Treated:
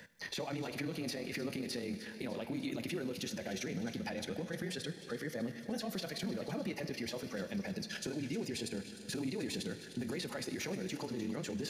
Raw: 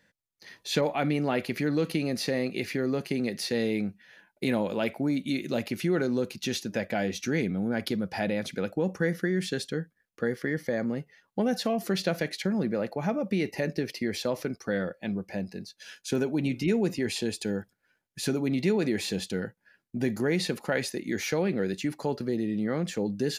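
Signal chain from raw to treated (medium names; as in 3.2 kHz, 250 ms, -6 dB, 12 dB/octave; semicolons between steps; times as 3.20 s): compression, threshold -35 dBFS, peak gain reduction 14 dB; peak limiter -33 dBFS, peak gain reduction 11.5 dB; on a send: thinning echo 603 ms, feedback 52%, level -15 dB; on the sum: Schroeder reverb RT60 4 s, combs from 30 ms, DRR 10 dB; granular stretch 0.5×, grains 51 ms; three bands compressed up and down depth 40%; trim +3.5 dB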